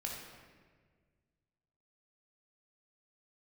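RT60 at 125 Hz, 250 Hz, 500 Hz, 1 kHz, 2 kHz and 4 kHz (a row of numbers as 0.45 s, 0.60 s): 2.4 s, 2.1 s, 1.8 s, 1.4 s, 1.5 s, 1.1 s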